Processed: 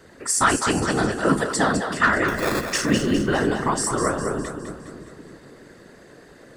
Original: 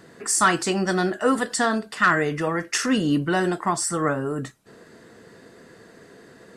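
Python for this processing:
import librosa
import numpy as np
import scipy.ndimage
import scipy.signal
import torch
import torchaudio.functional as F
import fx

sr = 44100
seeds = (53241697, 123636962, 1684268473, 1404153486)

p1 = fx.whisperise(x, sr, seeds[0])
p2 = fx.sample_hold(p1, sr, seeds[1], rate_hz=3000.0, jitter_pct=0, at=(2.28, 2.7))
y = p2 + fx.echo_split(p2, sr, split_hz=410.0, low_ms=313, high_ms=205, feedback_pct=52, wet_db=-7.5, dry=0)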